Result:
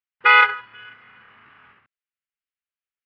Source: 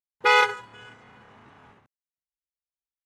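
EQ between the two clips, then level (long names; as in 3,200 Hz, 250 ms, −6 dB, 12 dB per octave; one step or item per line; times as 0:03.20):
elliptic low-pass filter 5,000 Hz, stop band 40 dB
flat-topped bell 1,900 Hz +13 dB
dynamic equaliser 850 Hz, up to +5 dB, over −25 dBFS, Q 1.3
−6.5 dB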